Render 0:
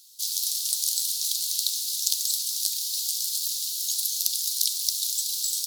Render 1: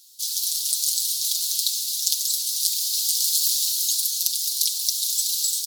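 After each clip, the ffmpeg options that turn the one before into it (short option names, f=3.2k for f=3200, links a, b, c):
-af "aecho=1:1:5.9:0.65,dynaudnorm=f=120:g=7:m=6.5dB"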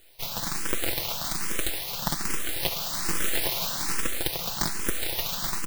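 -filter_complex "[0:a]acrossover=split=3500[a][b];[b]aeval=exprs='abs(val(0))':c=same[c];[a][c]amix=inputs=2:normalize=0,asplit=2[d][e];[e]afreqshift=1.2[f];[d][f]amix=inputs=2:normalize=1,volume=1dB"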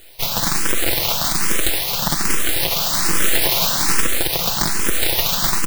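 -af "alimiter=level_in=12.5dB:limit=-1dB:release=50:level=0:latency=1,volume=-1dB"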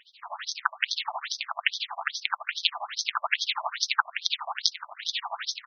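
-af "tremolo=f=12:d=0.96,aeval=exprs='0.794*(cos(1*acos(clip(val(0)/0.794,-1,1)))-cos(1*PI/2))+0.316*(cos(2*acos(clip(val(0)/0.794,-1,1)))-cos(2*PI/2))+0.178*(cos(3*acos(clip(val(0)/0.794,-1,1)))-cos(3*PI/2))+0.0282*(cos(5*acos(clip(val(0)/0.794,-1,1)))-cos(5*PI/2))+0.0794*(cos(8*acos(clip(val(0)/0.794,-1,1)))-cos(8*PI/2))':c=same,afftfilt=real='re*between(b*sr/1024,820*pow(4600/820,0.5+0.5*sin(2*PI*2.4*pts/sr))/1.41,820*pow(4600/820,0.5+0.5*sin(2*PI*2.4*pts/sr))*1.41)':imag='im*between(b*sr/1024,820*pow(4600/820,0.5+0.5*sin(2*PI*2.4*pts/sr))/1.41,820*pow(4600/820,0.5+0.5*sin(2*PI*2.4*pts/sr))*1.41)':win_size=1024:overlap=0.75,volume=7dB"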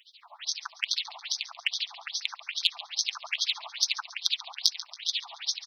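-af "aecho=1:1:139|278|417|556:0.141|0.0678|0.0325|0.0156,aexciter=amount=5.9:drive=3.8:freq=2.4k,volume=-13dB"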